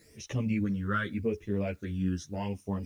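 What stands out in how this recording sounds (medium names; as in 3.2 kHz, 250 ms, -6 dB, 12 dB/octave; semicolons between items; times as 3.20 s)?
phasing stages 12, 0.85 Hz, lowest notch 710–1500 Hz; a quantiser's noise floor 12-bit, dither triangular; a shimmering, thickened sound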